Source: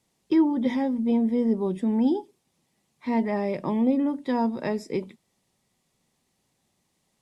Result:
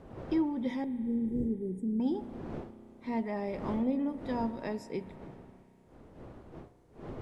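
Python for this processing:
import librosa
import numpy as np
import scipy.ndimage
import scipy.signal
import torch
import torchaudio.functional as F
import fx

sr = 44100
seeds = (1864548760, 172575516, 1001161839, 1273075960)

y = fx.dmg_wind(x, sr, seeds[0], corner_hz=430.0, level_db=-38.0)
y = fx.cheby2_bandstop(y, sr, low_hz=900.0, high_hz=3900.0, order=4, stop_db=50, at=(0.84, 2.0))
y = fx.rev_spring(y, sr, rt60_s=3.1, pass_ms=(32,), chirp_ms=30, drr_db=13.5)
y = F.gain(torch.from_numpy(y), -8.5).numpy()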